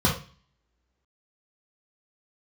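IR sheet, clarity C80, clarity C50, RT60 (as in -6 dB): 13.0 dB, 6.5 dB, not exponential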